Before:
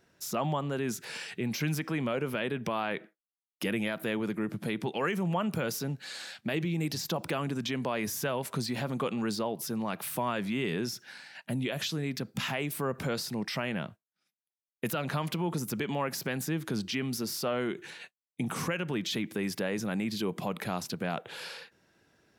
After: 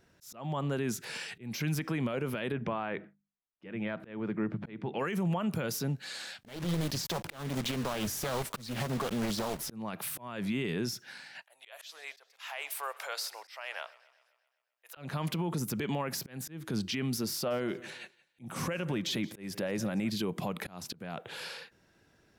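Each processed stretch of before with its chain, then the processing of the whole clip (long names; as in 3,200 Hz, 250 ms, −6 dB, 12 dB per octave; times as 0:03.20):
0:02.52–0:04.99: low-pass filter 2,300 Hz + mains-hum notches 50/100/150/200/250/300 Hz
0:06.41–0:09.71: one scale factor per block 3 bits + highs frequency-modulated by the lows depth 0.77 ms
0:11.43–0:14.97: inverse Chebyshev high-pass filter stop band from 250 Hz, stop band 50 dB + feedback echo with a swinging delay time 129 ms, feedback 58%, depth 92 cents, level −21.5 dB
0:17.33–0:20.10: parametric band 530 Hz +5.5 dB 0.62 octaves + notch filter 450 Hz, Q 6.9 + repeating echo 174 ms, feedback 33%, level −21.5 dB
whole clip: low-shelf EQ 71 Hz +11 dB; brickwall limiter −23.5 dBFS; volume swells 258 ms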